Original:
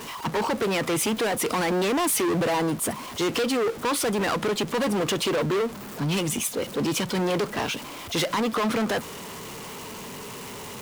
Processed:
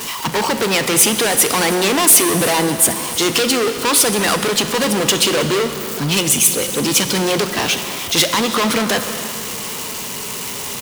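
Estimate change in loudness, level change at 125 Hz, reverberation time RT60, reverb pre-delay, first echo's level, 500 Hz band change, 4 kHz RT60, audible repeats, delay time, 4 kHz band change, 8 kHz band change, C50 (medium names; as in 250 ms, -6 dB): +10.0 dB, +6.0 dB, 2.9 s, 29 ms, -17.5 dB, +6.5 dB, 2.5 s, 1, 318 ms, +13.5 dB, +16.0 dB, 8.5 dB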